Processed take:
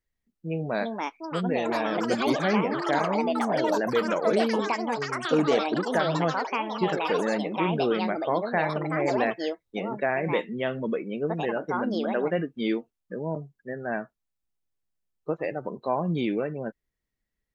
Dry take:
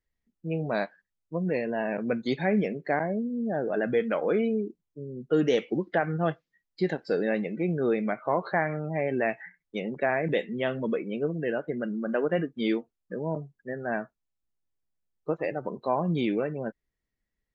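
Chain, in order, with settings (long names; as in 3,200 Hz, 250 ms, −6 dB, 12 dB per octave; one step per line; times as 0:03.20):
delay with pitch and tempo change per echo 491 ms, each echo +6 semitones, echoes 3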